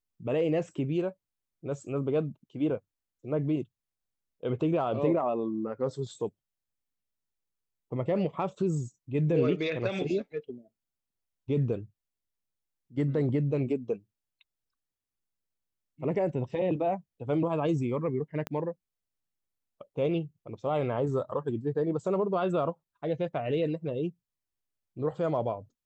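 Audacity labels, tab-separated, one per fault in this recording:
18.470000	18.470000	pop -19 dBFS

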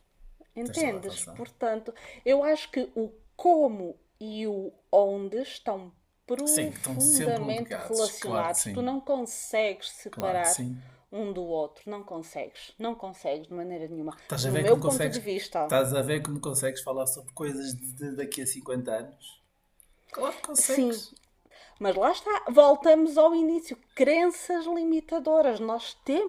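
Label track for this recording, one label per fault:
10.200000	10.200000	pop -16 dBFS

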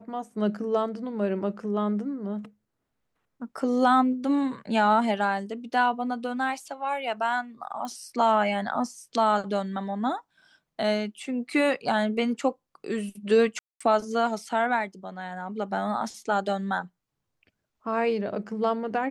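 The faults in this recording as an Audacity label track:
7.850000	7.850000	pop -23 dBFS
13.590000	13.800000	gap 0.215 s

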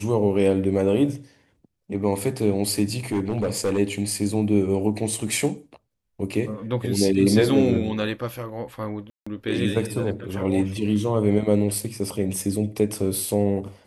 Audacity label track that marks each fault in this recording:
2.960000	3.790000	clipped -18.5 dBFS
9.100000	9.270000	gap 0.165 s

